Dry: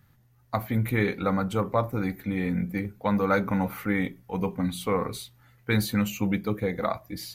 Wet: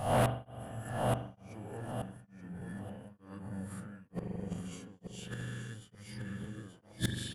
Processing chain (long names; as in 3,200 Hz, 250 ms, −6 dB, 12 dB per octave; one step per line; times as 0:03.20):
peak hold with a rise ahead of every peak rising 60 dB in 0.92 s
camcorder AGC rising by 67 dB per second
dynamic equaliser 1,100 Hz, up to −8 dB, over −38 dBFS, Q 0.88
formants moved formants −5 semitones
gate with flip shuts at −20 dBFS, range −34 dB
repeating echo 879 ms, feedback 25%, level −8 dB
spring reverb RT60 1.6 s, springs 41 ms, chirp 70 ms, DRR 9.5 dB
soft clipping −36 dBFS, distortion −6 dB
tremolo along a rectified sine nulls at 1.1 Hz
level +15.5 dB